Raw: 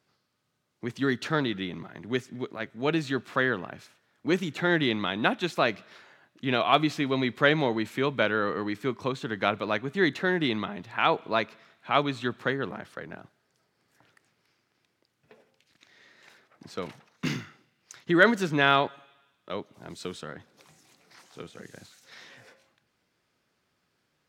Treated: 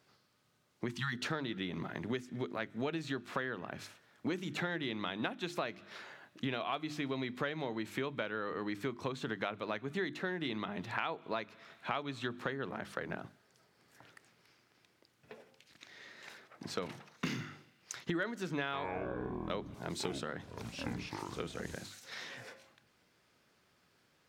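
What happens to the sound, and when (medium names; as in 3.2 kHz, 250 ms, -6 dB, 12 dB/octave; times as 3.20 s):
0.89–1.13 s: spectral selection erased 250–790 Hz
18.63–21.75 s: ever faster or slower copies 102 ms, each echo -7 st, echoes 3, each echo -6 dB
whole clip: hum notches 50/100/150/200/250/300/350 Hz; compression 10:1, threshold -37 dBFS; trim +3.5 dB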